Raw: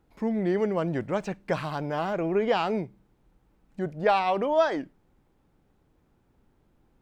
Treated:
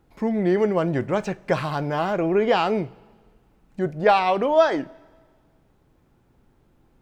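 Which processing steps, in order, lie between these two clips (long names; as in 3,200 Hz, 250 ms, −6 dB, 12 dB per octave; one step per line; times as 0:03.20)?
coupled-rooms reverb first 0.23 s, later 1.7 s, from −19 dB, DRR 13 dB
level +5 dB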